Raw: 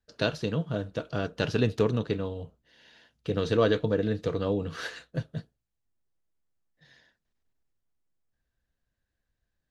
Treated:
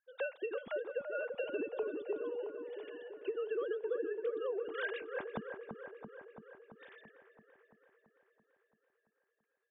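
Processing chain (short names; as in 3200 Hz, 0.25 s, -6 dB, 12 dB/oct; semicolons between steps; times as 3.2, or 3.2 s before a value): sine-wave speech; compressor 12:1, threshold -38 dBFS, peak gain reduction 23.5 dB; spectral gain 1.31–2.23, 1100–2300 Hz -9 dB; dark delay 0.336 s, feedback 67%, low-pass 1500 Hz, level -6 dB; gain +3 dB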